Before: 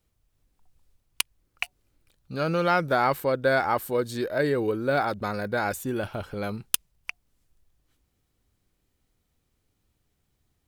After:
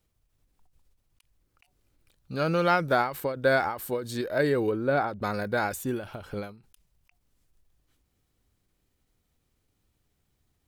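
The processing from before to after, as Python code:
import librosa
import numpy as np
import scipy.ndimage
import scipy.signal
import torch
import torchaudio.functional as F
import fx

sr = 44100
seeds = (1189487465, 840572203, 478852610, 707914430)

y = fx.high_shelf(x, sr, hz=fx.line((4.69, 4500.0), (5.21, 2200.0)), db=-11.0, at=(4.69, 5.21), fade=0.02)
y = fx.end_taper(y, sr, db_per_s=120.0)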